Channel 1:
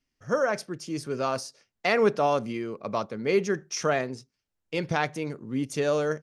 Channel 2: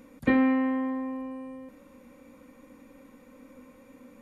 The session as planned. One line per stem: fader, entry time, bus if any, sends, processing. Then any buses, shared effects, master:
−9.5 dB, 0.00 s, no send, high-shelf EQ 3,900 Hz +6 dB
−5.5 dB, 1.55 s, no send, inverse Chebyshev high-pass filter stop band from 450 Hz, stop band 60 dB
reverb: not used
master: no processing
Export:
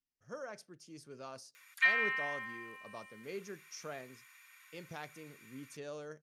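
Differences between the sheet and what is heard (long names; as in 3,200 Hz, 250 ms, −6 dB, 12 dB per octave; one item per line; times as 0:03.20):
stem 1 −9.5 dB → −20.0 dB
stem 2 −5.5 dB → +6.0 dB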